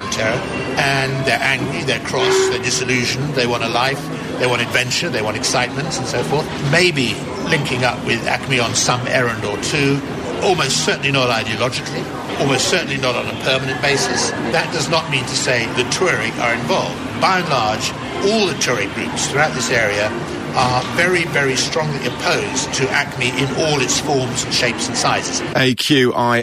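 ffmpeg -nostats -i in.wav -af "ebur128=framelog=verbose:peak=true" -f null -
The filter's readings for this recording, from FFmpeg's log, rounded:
Integrated loudness:
  I:         -17.0 LUFS
  Threshold: -26.9 LUFS
Loudness range:
  LRA:         0.9 LU
  Threshold: -37.0 LUFS
  LRA low:   -17.5 LUFS
  LRA high:  -16.5 LUFS
True peak:
  Peak:       -1.2 dBFS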